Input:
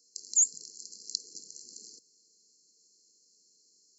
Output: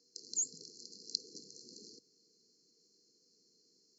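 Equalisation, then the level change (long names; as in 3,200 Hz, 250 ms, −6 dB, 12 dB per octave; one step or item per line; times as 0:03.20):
high-frequency loss of the air 220 metres
+6.5 dB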